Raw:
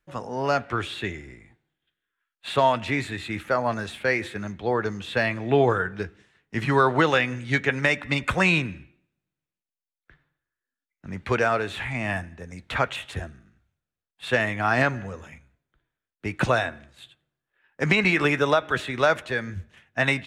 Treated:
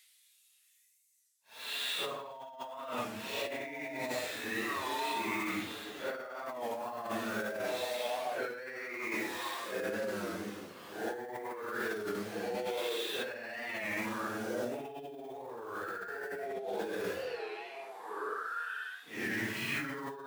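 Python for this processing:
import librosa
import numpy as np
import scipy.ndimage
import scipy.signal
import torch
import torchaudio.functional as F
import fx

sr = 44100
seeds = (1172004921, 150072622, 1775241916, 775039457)

p1 = fx.delta_hold(x, sr, step_db=-35.5)
p2 = scipy.signal.sosfilt(scipy.signal.butter(2, 290.0, 'highpass', fs=sr, output='sos'), p1)
p3 = p2 + fx.echo_stepped(p2, sr, ms=298, hz=530.0, octaves=1.4, feedback_pct=70, wet_db=-6, dry=0)
p4 = fx.paulstretch(p3, sr, seeds[0], factor=4.3, window_s=0.1, from_s=2.07)
p5 = fx.over_compress(p4, sr, threshold_db=-31.0, ratio=-1.0)
p6 = fx.record_warp(p5, sr, rpm=33.33, depth_cents=100.0)
y = F.gain(torch.from_numpy(p6), -7.5).numpy()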